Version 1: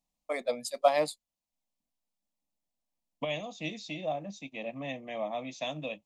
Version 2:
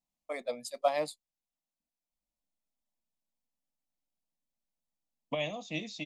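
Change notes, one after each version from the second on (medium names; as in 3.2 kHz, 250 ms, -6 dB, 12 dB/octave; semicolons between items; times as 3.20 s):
first voice -4.5 dB; second voice: entry +2.10 s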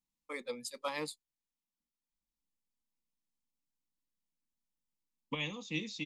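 master: add Butterworth band-stop 660 Hz, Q 1.9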